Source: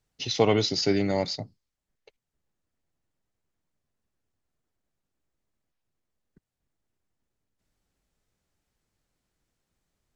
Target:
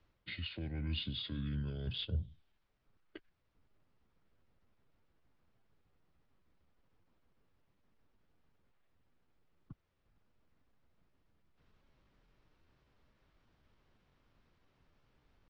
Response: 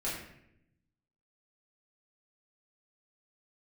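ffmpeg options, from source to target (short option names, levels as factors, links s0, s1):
-filter_complex "[0:a]areverse,acompressor=threshold=0.0112:ratio=5,areverse,atempo=0.91,lowpass=4000,asetrate=31752,aresample=44100,acrossover=split=160|3000[s0][s1][s2];[s1]acompressor=threshold=0.00158:ratio=10[s3];[s0][s3][s2]amix=inputs=3:normalize=0,volume=2.66"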